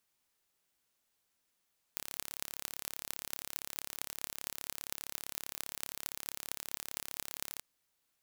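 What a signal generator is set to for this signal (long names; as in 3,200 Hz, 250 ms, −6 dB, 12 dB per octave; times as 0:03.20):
impulse train 35.2 per second, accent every 8, −8 dBFS 5.64 s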